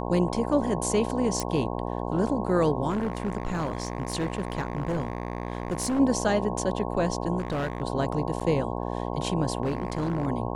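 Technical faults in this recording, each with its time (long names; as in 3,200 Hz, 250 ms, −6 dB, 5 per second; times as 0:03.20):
mains buzz 60 Hz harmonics 18 −31 dBFS
0:01.40: click
0:02.89–0:06.00: clipping −23.5 dBFS
0:07.38–0:07.82: clipping −24.5 dBFS
0:08.40–0:08.41: drop-out 6.9 ms
0:09.63–0:10.27: clipping −22.5 dBFS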